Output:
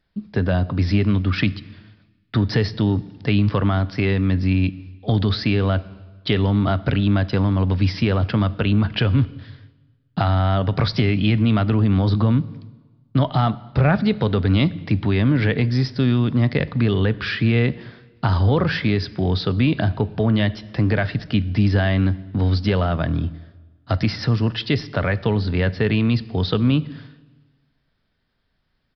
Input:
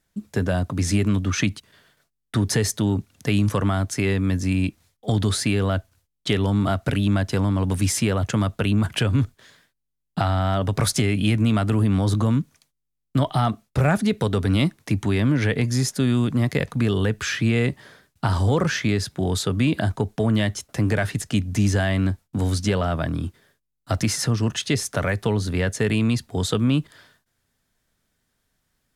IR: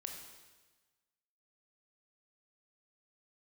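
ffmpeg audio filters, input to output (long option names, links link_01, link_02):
-filter_complex "[0:a]asplit=2[link_01][link_02];[1:a]atrim=start_sample=2205,lowshelf=frequency=200:gain=10.5[link_03];[link_02][link_03]afir=irnorm=-1:irlink=0,volume=-10dB[link_04];[link_01][link_04]amix=inputs=2:normalize=0,aresample=11025,aresample=44100"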